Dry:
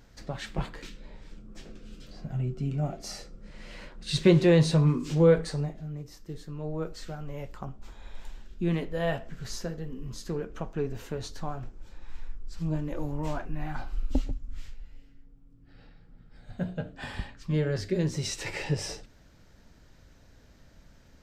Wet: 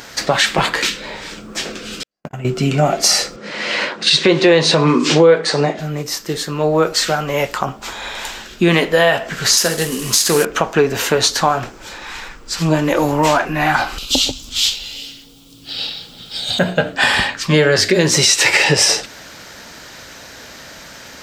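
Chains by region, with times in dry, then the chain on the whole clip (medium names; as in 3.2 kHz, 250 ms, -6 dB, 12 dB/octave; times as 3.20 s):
2.03–2.45 s: gate -35 dBFS, range -58 dB + peaking EQ 4 kHz -8 dB 0.67 oct + compression 12:1, threshold -38 dBFS
3.36–5.79 s: band-pass 260–5600 Hz + bass shelf 360 Hz +8.5 dB
9.57–10.45 s: CVSD coder 64 kbps + treble shelf 3.7 kHz +11.5 dB
13.98–16.59 s: resonant high shelf 2.5 kHz +11 dB, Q 3 + compression 2:1, threshold -33 dBFS
whole clip: high-pass 1.1 kHz 6 dB/octave; compression 4:1, threshold -39 dBFS; loudness maximiser +31 dB; trim -1 dB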